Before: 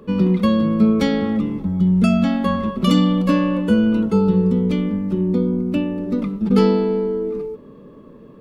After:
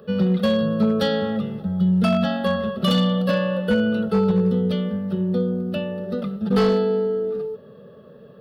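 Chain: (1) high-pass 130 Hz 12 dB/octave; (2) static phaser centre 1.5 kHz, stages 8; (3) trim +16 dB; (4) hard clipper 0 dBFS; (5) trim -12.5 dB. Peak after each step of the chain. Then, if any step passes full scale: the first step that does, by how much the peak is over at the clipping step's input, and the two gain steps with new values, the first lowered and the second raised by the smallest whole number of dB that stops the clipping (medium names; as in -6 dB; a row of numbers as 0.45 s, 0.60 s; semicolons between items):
-3.5 dBFS, -9.0 dBFS, +7.0 dBFS, 0.0 dBFS, -12.5 dBFS; step 3, 7.0 dB; step 3 +9 dB, step 5 -5.5 dB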